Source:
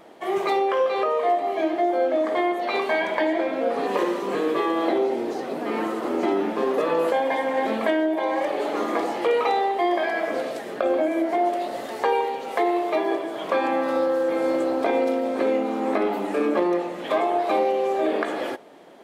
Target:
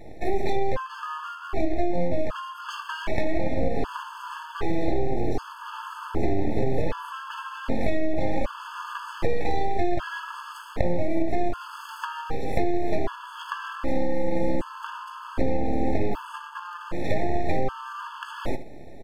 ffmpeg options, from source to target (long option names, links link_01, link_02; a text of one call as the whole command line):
ffmpeg -i in.wav -filter_complex "[0:a]asettb=1/sr,asplit=3[link_01][link_02][link_03];[link_01]atrim=end=16.624[link_04];[link_02]atrim=start=16.62:end=18.08,asetpts=PTS-STARTPTS,afade=type=in:duration=0.004:curve=qsin,afade=type=out:start_time=1.456:duration=0.004:curve=qsin,equalizer=frequency=1200:width_type=o:width=0.39:gain=8.5[link_05];[link_03]atrim=start=18.076[link_06];[link_04][link_05]acrossfade=duration=0.004:curve1=hsin:curve2=qsin[link_07];[link_07][link_06]acrossfade=duration=0.004:curve1=qsin:curve2=hsin,aeval=exprs='max(val(0),0)':channel_layout=same,lowshelf=frequency=260:gain=12,aecho=1:1:75:0.178,acompressor=threshold=-20dB:ratio=6,afftfilt=real='re*gt(sin(2*PI*0.65*pts/sr)*(1-2*mod(floor(b*sr/1024/870),2)),0)':imag='im*gt(sin(2*PI*0.65*pts/sr)*(1-2*mod(floor(b*sr/1024/870),2)),0)':win_size=1024:overlap=0.75,volume=4dB" out.wav